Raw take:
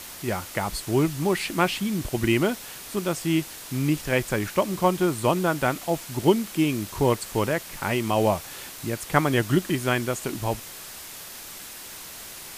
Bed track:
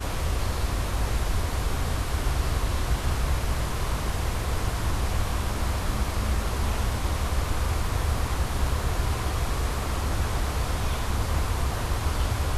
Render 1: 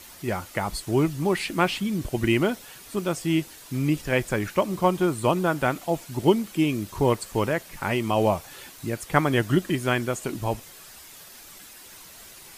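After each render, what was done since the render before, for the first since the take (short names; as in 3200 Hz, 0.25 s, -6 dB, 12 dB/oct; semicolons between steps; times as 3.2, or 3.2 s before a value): denoiser 8 dB, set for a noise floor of -41 dBFS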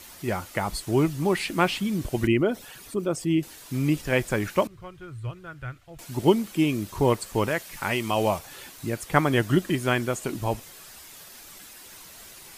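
2.27–3.43 formant sharpening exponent 1.5; 4.67–5.99 EQ curve 120 Hz 0 dB, 190 Hz -24 dB, 460 Hz -20 dB, 900 Hz -25 dB, 1400 Hz -12 dB, 3000 Hz -16 dB, 13000 Hz -27 dB; 7.48–8.39 tilt shelf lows -3.5 dB, about 1200 Hz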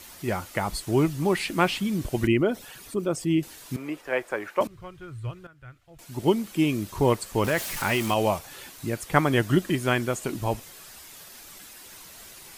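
3.76–4.61 three-band isolator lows -24 dB, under 360 Hz, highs -13 dB, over 2200 Hz; 5.47–6.67 fade in, from -14.5 dB; 7.44–8.14 zero-crossing step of -30 dBFS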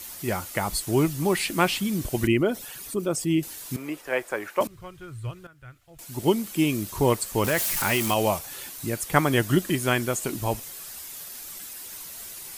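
high shelf 6400 Hz +10.5 dB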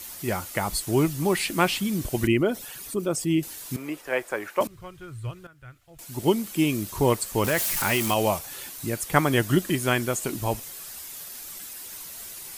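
nothing audible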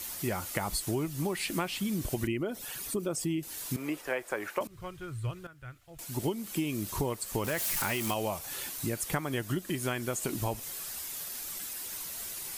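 compressor 12:1, threshold -28 dBFS, peak gain reduction 15.5 dB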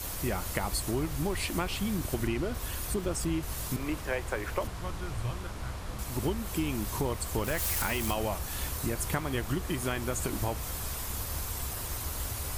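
add bed track -11.5 dB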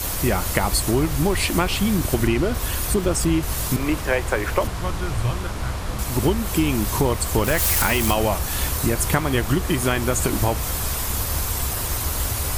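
gain +11 dB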